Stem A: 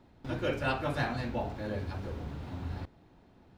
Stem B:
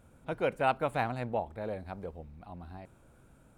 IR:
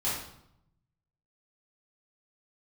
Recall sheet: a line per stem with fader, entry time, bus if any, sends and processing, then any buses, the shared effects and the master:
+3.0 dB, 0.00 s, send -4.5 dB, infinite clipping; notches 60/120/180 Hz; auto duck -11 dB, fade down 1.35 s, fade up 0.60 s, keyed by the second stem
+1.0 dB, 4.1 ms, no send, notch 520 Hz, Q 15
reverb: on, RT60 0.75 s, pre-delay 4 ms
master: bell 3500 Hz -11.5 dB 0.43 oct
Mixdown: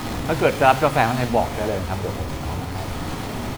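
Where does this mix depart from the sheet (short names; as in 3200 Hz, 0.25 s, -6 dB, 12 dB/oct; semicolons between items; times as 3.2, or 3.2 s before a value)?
stem B +1.0 dB -> +13.0 dB; master: missing bell 3500 Hz -11.5 dB 0.43 oct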